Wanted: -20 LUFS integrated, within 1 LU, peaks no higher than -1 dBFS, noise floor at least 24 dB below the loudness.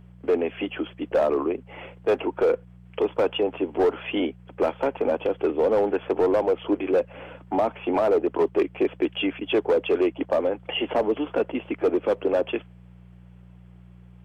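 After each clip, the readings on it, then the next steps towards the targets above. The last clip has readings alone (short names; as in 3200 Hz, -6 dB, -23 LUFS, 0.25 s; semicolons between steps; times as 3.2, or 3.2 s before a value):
clipped 1.6%; flat tops at -15.0 dBFS; hum 60 Hz; harmonics up to 180 Hz; hum level -46 dBFS; loudness -25.0 LUFS; peak -15.0 dBFS; loudness target -20.0 LUFS
-> clip repair -15 dBFS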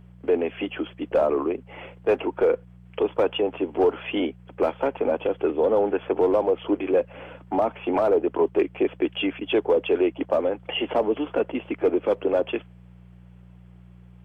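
clipped 0.0%; hum 60 Hz; harmonics up to 180 Hz; hum level -45 dBFS
-> de-hum 60 Hz, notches 3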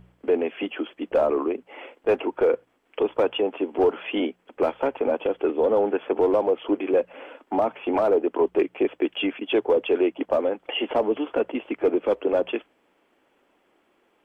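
hum none; loudness -24.5 LUFS; peak -10.0 dBFS; loudness target -20.0 LUFS
-> gain +4.5 dB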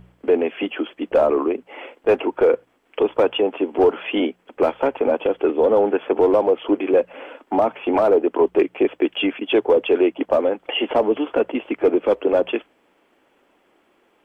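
loudness -20.0 LUFS; peak -5.5 dBFS; noise floor -62 dBFS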